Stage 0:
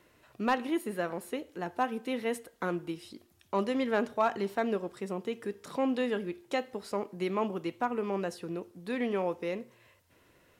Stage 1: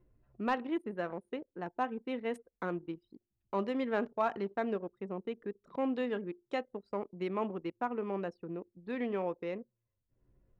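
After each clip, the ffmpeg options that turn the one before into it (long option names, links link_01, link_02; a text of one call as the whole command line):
ffmpeg -i in.wav -af "anlmdn=0.398,acompressor=mode=upward:threshold=-48dB:ratio=2.5,highshelf=frequency=6100:gain=-12,volume=-3.5dB" out.wav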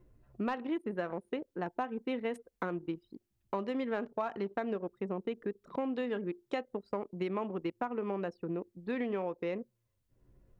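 ffmpeg -i in.wav -af "acompressor=threshold=-36dB:ratio=10,volume=5.5dB" out.wav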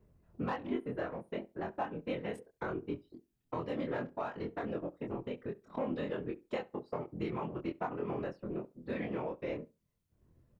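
ffmpeg -i in.wav -filter_complex "[0:a]afftfilt=real='hypot(re,im)*cos(2*PI*random(0))':imag='hypot(re,im)*sin(2*PI*random(1))':win_size=512:overlap=0.75,asplit=2[link_01][link_02];[link_02]adelay=24,volume=-3dB[link_03];[link_01][link_03]amix=inputs=2:normalize=0,asplit=2[link_04][link_05];[link_05]adelay=68,lowpass=frequency=2400:poles=1,volume=-21dB,asplit=2[link_06][link_07];[link_07]adelay=68,lowpass=frequency=2400:poles=1,volume=0.21[link_08];[link_04][link_06][link_08]amix=inputs=3:normalize=0,volume=2dB" out.wav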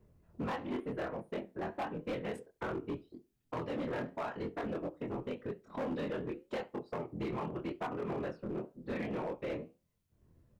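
ffmpeg -i in.wav -af "flanger=delay=8:depth=8:regen=-72:speed=0.89:shape=triangular,asoftclip=type=hard:threshold=-38dB,volume=5.5dB" out.wav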